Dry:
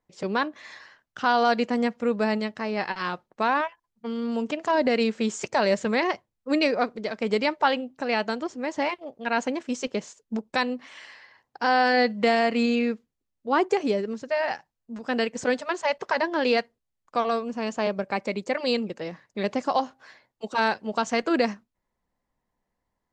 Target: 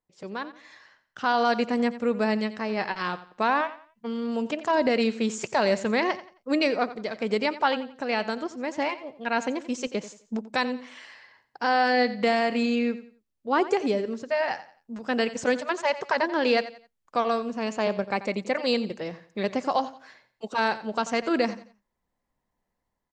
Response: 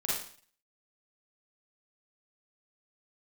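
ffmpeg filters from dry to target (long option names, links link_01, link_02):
-af "aecho=1:1:88|176|264:0.178|0.0551|0.0171,dynaudnorm=framelen=430:gausssize=5:maxgain=11.5dB,volume=-9dB"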